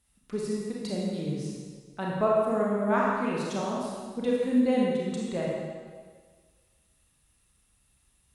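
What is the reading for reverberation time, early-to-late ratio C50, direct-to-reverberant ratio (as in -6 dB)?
1.6 s, -2.0 dB, -4.5 dB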